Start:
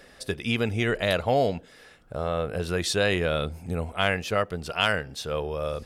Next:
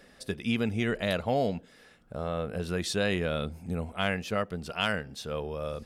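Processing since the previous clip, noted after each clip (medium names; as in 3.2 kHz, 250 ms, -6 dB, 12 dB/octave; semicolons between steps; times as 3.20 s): peaking EQ 210 Hz +7 dB 0.73 oct; trim -5.5 dB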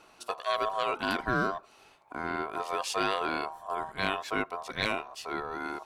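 ring modulator 870 Hz; trim +1.5 dB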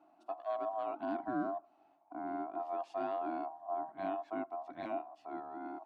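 two resonant band-passes 460 Hz, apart 1.2 oct; trim +1.5 dB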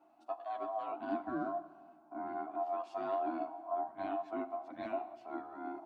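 chorus voices 6, 0.39 Hz, delay 11 ms, depth 2.5 ms; plate-style reverb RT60 2 s, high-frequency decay 0.75×, DRR 13.5 dB; trim +3 dB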